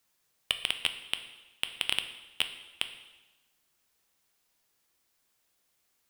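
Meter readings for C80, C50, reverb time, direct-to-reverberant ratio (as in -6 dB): 12.5 dB, 10.5 dB, 1.1 s, 7.5 dB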